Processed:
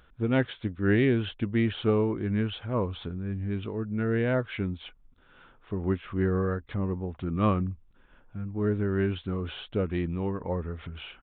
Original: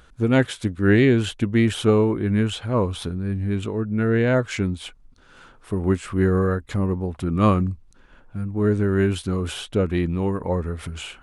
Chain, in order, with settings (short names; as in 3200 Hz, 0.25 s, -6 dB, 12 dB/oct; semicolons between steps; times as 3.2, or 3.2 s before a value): downsampling 8000 Hz; gain -7 dB